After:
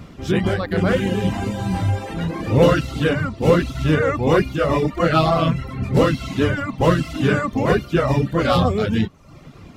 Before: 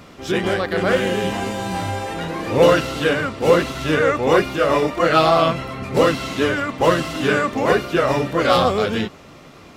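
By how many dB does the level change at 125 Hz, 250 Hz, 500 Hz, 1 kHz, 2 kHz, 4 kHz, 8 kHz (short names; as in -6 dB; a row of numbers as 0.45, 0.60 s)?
+7.0, +2.5, -2.5, -3.5, -3.5, -4.0, -5.0 dB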